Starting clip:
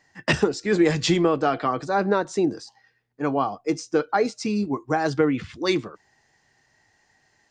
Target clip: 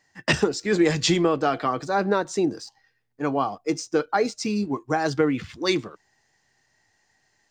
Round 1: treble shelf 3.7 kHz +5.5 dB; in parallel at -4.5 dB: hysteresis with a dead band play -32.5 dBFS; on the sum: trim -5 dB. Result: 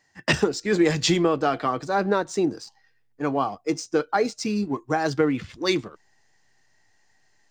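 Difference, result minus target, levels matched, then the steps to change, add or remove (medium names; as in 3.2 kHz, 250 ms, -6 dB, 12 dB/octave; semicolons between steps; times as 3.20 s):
hysteresis with a dead band: distortion +9 dB
change: hysteresis with a dead band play -42 dBFS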